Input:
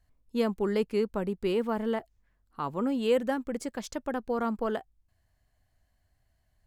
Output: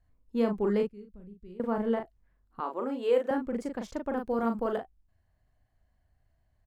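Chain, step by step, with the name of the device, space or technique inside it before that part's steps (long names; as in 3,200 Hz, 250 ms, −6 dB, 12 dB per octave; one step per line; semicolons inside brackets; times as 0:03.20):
0:00.85–0:01.60: guitar amp tone stack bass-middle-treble 10-0-1
through cloth (high-shelf EQ 2,600 Hz −12.5 dB)
double-tracking delay 39 ms −5 dB
0:02.60–0:03.31: high-pass filter 320 Hz 24 dB per octave
0:04.17–0:04.78: high-shelf EQ 6,600 Hz +11 dB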